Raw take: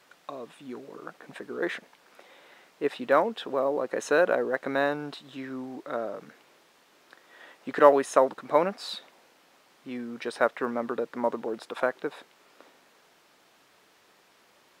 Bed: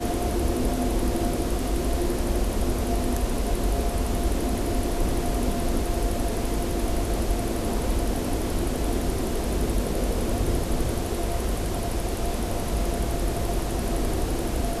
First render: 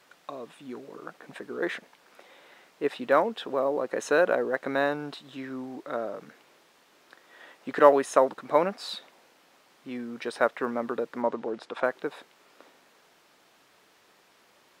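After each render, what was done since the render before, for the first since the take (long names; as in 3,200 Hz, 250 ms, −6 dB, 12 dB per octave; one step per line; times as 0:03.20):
0:11.22–0:11.84: high-frequency loss of the air 62 metres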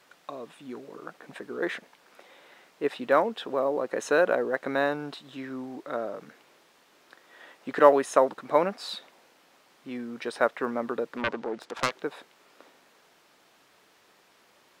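0:11.17–0:12.02: phase distortion by the signal itself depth 0.7 ms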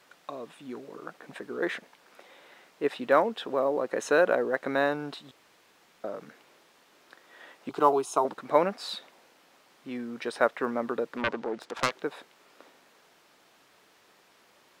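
0:05.31–0:06.04: fill with room tone
0:07.69–0:08.25: phaser with its sweep stopped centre 360 Hz, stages 8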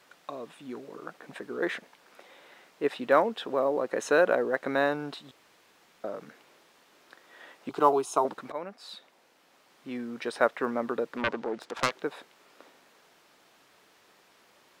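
0:08.52–0:09.91: fade in, from −16 dB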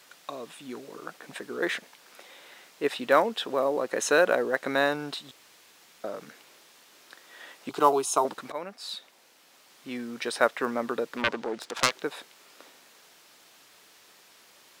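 high-shelf EQ 2,700 Hz +11 dB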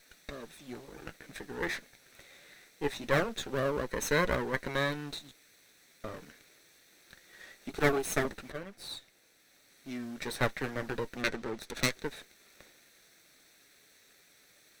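lower of the sound and its delayed copy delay 0.5 ms
flanger 0.25 Hz, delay 4.4 ms, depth 3.2 ms, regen −60%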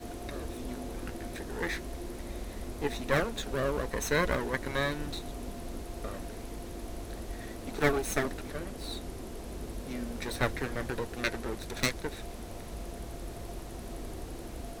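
mix in bed −15 dB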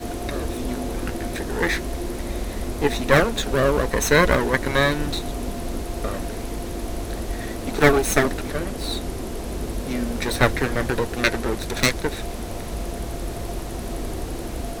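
level +11.5 dB
brickwall limiter −1 dBFS, peak gain reduction 2.5 dB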